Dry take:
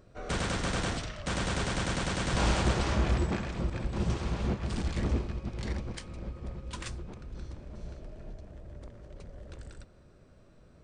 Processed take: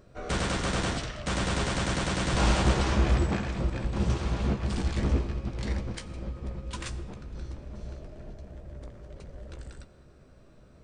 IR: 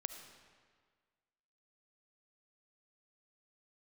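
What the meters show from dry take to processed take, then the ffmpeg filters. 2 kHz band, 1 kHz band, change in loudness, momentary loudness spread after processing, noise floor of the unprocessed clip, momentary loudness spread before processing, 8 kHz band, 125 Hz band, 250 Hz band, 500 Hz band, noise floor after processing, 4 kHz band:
+2.5 dB, +3.0 dB, +3.0 dB, 20 LU, -57 dBFS, 19 LU, +2.5 dB, +3.0 dB, +3.0 dB, +2.5 dB, -55 dBFS, +2.5 dB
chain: -filter_complex "[0:a]asplit=2[s0][s1];[1:a]atrim=start_sample=2205,adelay=15[s2];[s1][s2]afir=irnorm=-1:irlink=0,volume=0.473[s3];[s0][s3]amix=inputs=2:normalize=0,volume=1.26"

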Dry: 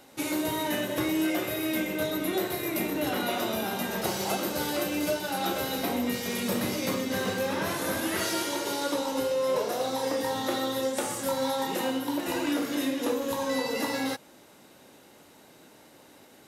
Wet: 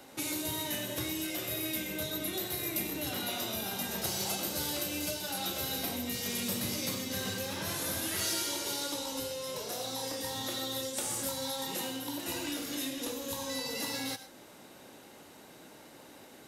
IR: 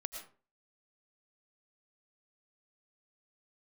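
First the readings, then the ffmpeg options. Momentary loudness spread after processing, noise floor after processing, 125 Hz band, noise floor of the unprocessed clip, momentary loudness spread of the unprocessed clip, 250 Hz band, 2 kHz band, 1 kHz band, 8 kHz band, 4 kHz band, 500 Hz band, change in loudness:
20 LU, -53 dBFS, -3.5 dB, -55 dBFS, 2 LU, -9.0 dB, -7.0 dB, -9.5 dB, +1.0 dB, -1.0 dB, -10.5 dB, -5.0 dB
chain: -filter_complex "[0:a]acrossover=split=130|3000[s0][s1][s2];[s1]acompressor=threshold=0.00891:ratio=4[s3];[s0][s3][s2]amix=inputs=3:normalize=0,asplit=2[s4][s5];[1:a]atrim=start_sample=2205,asetrate=52920,aresample=44100[s6];[s5][s6]afir=irnorm=-1:irlink=0,volume=1.26[s7];[s4][s7]amix=inputs=2:normalize=0,volume=0.631"

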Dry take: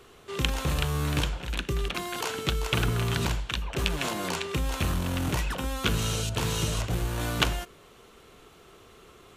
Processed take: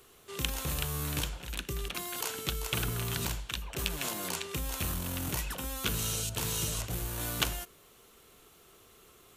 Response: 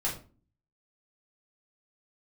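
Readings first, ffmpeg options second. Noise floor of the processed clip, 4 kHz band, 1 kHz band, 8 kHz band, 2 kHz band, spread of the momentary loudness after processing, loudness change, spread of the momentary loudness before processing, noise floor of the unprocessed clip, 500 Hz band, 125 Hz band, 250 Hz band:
-59 dBFS, -4.5 dB, -7.5 dB, +1.0 dB, -6.5 dB, 6 LU, -4.5 dB, 5 LU, -54 dBFS, -8.0 dB, -8.0 dB, -8.0 dB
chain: -af "aemphasis=mode=production:type=50fm,volume=0.422"

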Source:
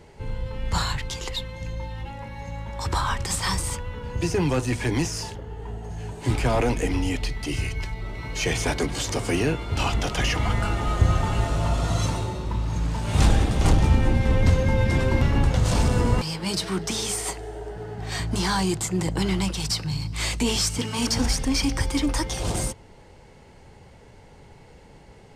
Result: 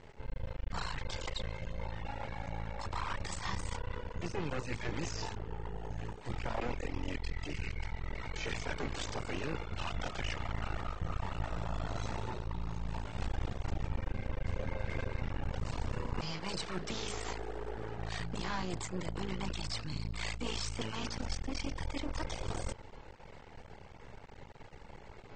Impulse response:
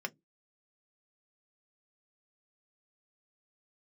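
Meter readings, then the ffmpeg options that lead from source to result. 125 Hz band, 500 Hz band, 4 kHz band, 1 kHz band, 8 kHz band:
-16.0 dB, -13.5 dB, -14.0 dB, -12.0 dB, -18.0 dB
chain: -af "lowpass=f=1900:p=1,equalizer=f=230:w=0.33:g=-6.5,areverse,acompressor=threshold=0.0141:ratio=4,areverse,aeval=exprs='max(val(0),0)':c=same,volume=1.68" -ar 24000 -c:a aac -b:a 24k

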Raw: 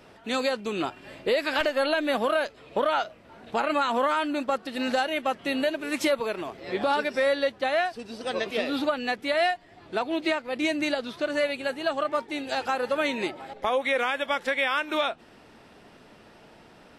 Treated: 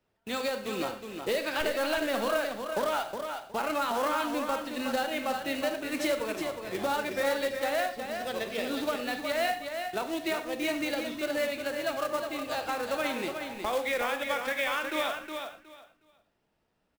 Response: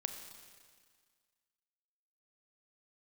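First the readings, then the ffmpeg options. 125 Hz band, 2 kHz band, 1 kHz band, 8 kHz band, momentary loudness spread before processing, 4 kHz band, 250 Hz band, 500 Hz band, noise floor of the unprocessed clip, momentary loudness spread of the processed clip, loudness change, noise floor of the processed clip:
-2.0 dB, -4.0 dB, -4.0 dB, +3.0 dB, 7 LU, -4.0 dB, -4.0 dB, -4.0 dB, -53 dBFS, 6 LU, -4.0 dB, -76 dBFS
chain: -filter_complex "[0:a]agate=range=0.0891:threshold=0.00794:ratio=16:detection=peak,acrossover=split=110|1900[s0][s1][s2];[s0]acontrast=83[s3];[s3][s1][s2]amix=inputs=3:normalize=0,flanger=delay=0.6:depth=6:regen=-90:speed=0.28:shape=triangular,acrusher=bits=3:mode=log:mix=0:aa=0.000001,aecho=1:1:365|730|1095:0.473|0.0946|0.0189[s4];[1:a]atrim=start_sample=2205,afade=t=out:st=0.17:d=0.01,atrim=end_sample=7938[s5];[s4][s5]afir=irnorm=-1:irlink=0"

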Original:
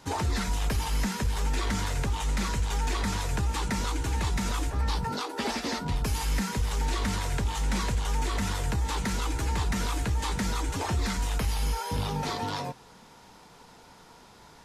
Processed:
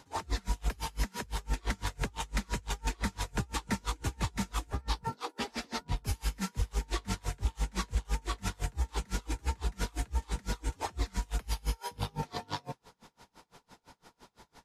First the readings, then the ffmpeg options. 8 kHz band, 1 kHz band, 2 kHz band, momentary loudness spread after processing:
-6.5 dB, -6.5 dB, -6.5 dB, 3 LU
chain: -af "aeval=exprs='val(0)*pow(10,-32*(0.5-0.5*cos(2*PI*5.9*n/s))/20)':c=same"

